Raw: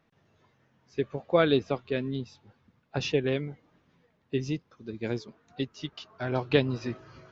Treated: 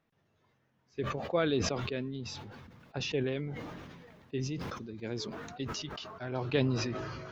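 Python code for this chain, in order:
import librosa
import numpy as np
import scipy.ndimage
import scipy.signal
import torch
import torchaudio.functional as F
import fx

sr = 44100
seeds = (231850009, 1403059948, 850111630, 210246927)

y = fx.sustainer(x, sr, db_per_s=28.0)
y = y * 10.0 ** (-7.5 / 20.0)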